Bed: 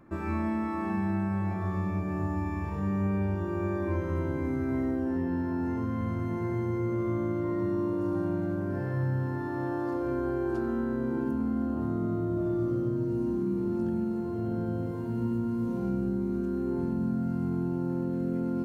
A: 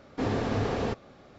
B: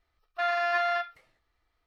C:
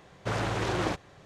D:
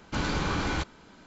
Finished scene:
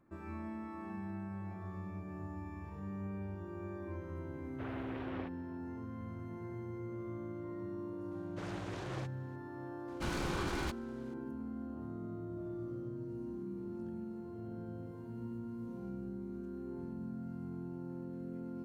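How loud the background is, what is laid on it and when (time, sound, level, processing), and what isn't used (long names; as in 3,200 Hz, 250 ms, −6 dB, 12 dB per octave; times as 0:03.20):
bed −13.5 dB
0:04.33: mix in C −15.5 dB + low-pass filter 3,000 Hz 24 dB per octave
0:08.11: mix in C −15 dB
0:09.88: mix in D −8.5 dB + short delay modulated by noise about 2,000 Hz, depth 0.037 ms
not used: A, B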